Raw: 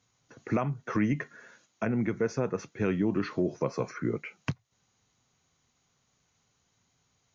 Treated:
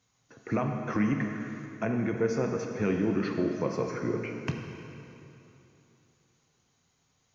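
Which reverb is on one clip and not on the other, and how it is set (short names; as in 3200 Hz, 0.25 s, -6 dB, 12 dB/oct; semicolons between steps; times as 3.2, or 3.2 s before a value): plate-style reverb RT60 3 s, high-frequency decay 0.9×, DRR 2.5 dB; gain -1 dB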